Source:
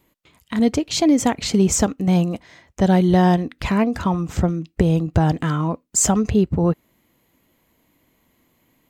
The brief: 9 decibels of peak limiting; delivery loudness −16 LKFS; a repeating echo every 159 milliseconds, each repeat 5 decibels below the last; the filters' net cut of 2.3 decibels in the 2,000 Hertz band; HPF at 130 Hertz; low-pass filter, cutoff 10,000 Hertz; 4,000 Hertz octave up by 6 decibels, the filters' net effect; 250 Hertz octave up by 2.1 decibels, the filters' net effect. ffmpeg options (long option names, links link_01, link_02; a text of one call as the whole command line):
ffmpeg -i in.wav -af "highpass=130,lowpass=10000,equalizer=frequency=250:width_type=o:gain=4,equalizer=frequency=2000:width_type=o:gain=-5,equalizer=frequency=4000:width_type=o:gain=8.5,alimiter=limit=-10dB:level=0:latency=1,aecho=1:1:159|318|477|636|795|954|1113:0.562|0.315|0.176|0.0988|0.0553|0.031|0.0173,volume=2.5dB" out.wav